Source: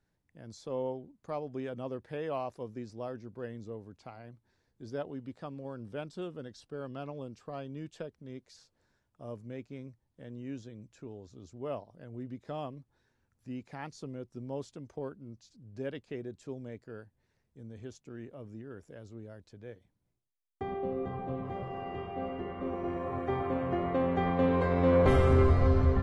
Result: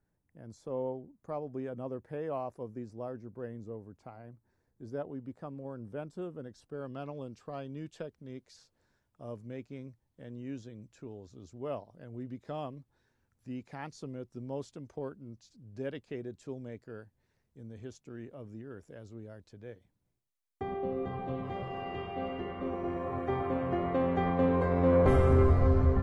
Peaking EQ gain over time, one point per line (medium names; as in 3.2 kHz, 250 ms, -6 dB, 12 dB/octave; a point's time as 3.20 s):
peaking EQ 3.8 kHz 1.7 oct
6.39 s -12.5 dB
7.09 s -1 dB
20.71 s -1 dB
21.30 s +6.5 dB
22.37 s +6.5 dB
22.86 s -1 dB
24.14 s -1 dB
24.61 s -8 dB